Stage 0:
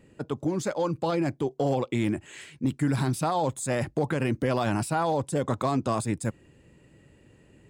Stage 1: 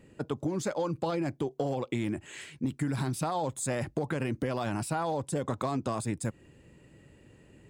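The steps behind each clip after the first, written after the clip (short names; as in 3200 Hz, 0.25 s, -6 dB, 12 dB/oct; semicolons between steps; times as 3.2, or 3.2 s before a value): compressor, threshold -27 dBFS, peak gain reduction 7 dB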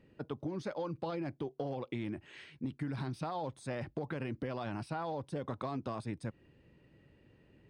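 polynomial smoothing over 15 samples; gain -7 dB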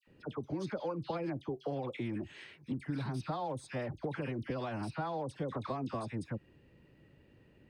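dispersion lows, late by 75 ms, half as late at 1500 Hz; gain +1 dB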